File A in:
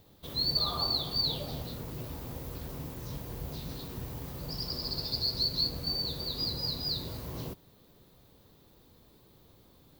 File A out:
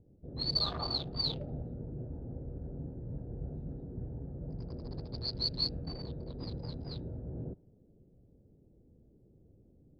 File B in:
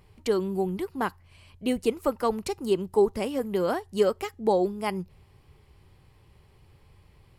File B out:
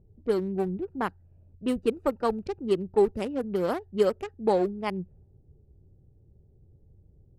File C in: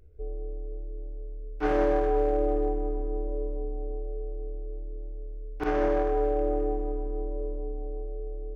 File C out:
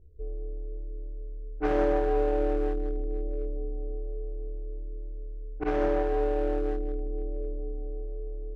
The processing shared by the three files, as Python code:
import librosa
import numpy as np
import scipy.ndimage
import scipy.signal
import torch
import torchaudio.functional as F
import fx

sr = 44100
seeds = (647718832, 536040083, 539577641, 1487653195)

y = fx.wiener(x, sr, points=41)
y = fx.env_lowpass(y, sr, base_hz=510.0, full_db=-23.0)